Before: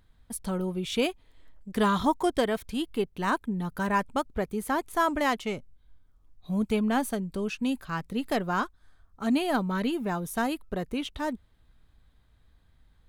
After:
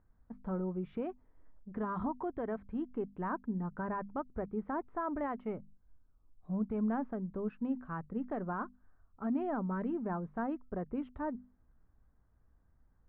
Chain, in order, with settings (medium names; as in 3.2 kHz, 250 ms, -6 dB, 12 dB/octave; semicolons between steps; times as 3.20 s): peak limiter -21 dBFS, peak gain reduction 9.5 dB; low-pass 1.5 kHz 24 dB/octave; peaking EQ 240 Hz +2.5 dB 0.77 oct; hum notches 50/100/150/200/250 Hz; trim -6.5 dB